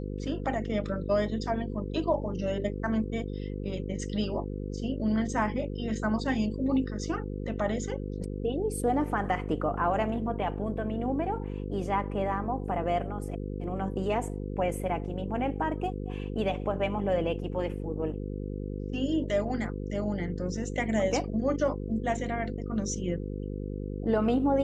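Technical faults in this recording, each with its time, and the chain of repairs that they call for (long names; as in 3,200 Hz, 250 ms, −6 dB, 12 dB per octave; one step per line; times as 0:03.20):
mains buzz 50 Hz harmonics 10 −35 dBFS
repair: hum removal 50 Hz, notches 10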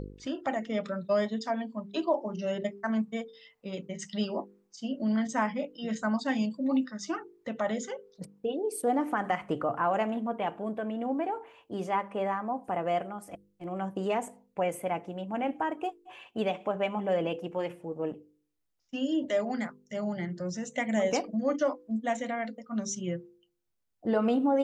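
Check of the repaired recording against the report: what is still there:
none of them is left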